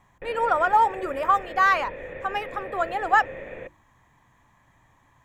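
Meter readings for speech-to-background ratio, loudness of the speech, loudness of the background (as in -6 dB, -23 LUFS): 14.5 dB, -23.5 LUFS, -38.0 LUFS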